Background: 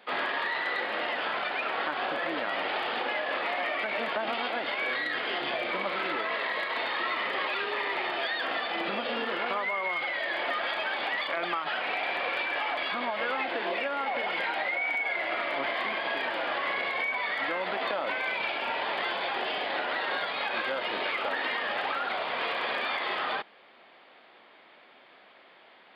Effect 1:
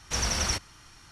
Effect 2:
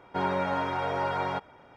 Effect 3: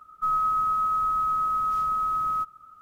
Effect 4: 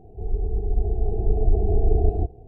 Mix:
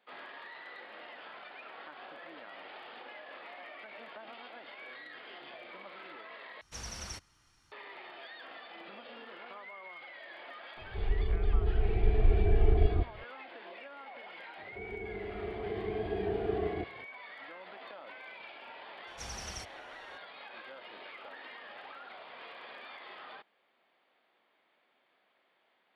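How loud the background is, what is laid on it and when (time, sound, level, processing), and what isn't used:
background -17.5 dB
6.61 replace with 1 -15 dB
10.77 add 4 -5.5 dB
14.58 add 4 -4.5 dB + HPF 190 Hz
19.07 add 1 -15.5 dB
not used: 2, 3

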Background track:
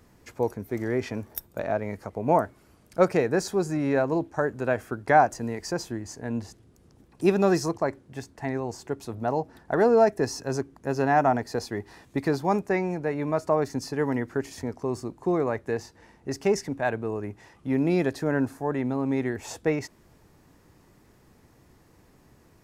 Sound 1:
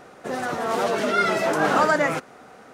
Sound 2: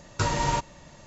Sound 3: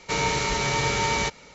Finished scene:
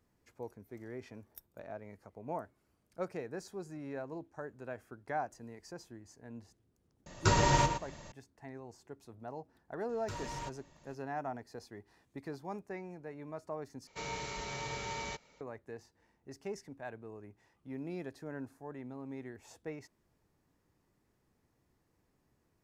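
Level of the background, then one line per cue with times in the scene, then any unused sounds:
background track -18 dB
7.06 add 2 -1.5 dB + outdoor echo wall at 20 m, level -8 dB
9.89 add 2 -13.5 dB + soft clip -23 dBFS
13.87 replace with 3 -16.5 dB + bell 660 Hz +3 dB
not used: 1

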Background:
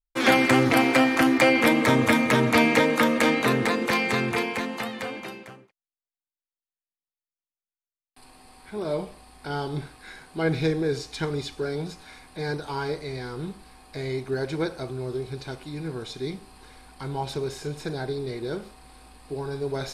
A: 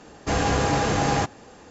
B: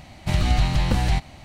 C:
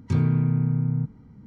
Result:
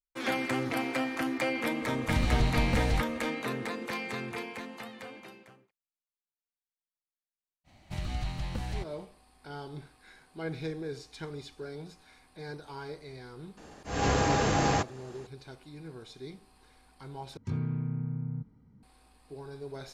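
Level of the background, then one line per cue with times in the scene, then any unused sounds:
background -12 dB
1.82 add B -7.5 dB
7.64 add B -14.5 dB, fades 0.05 s
13.57 add A -4 dB + auto swell 0.235 s
17.37 replace with C -11 dB

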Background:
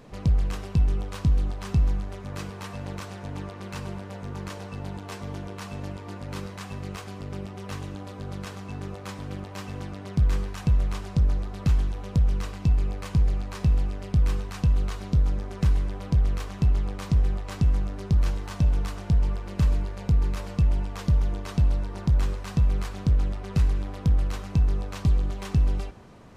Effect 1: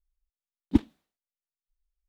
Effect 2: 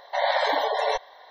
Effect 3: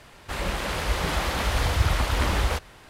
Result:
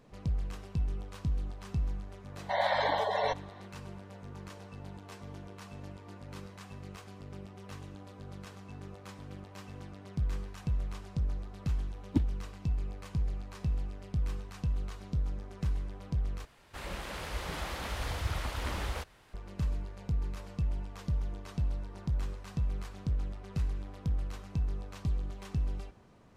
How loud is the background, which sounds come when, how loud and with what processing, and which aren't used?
background -10.5 dB
2.36 add 2 -5.5 dB + high shelf 7800 Hz -12 dB
11.41 add 1 -8.5 dB
16.45 replace with 3 -11.5 dB

